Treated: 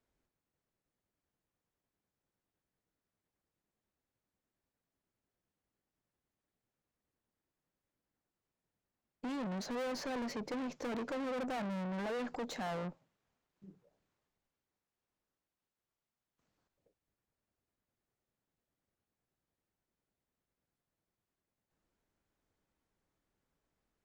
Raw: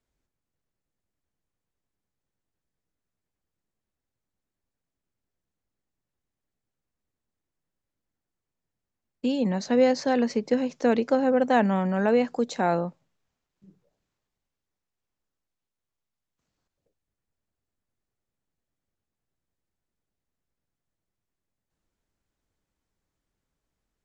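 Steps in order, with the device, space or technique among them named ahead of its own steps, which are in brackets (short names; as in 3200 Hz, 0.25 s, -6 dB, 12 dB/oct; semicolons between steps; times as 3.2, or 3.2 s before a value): tube preamp driven hard (tube stage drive 38 dB, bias 0.4; low shelf 140 Hz -7 dB; high shelf 3200 Hz -8 dB); gain +2.5 dB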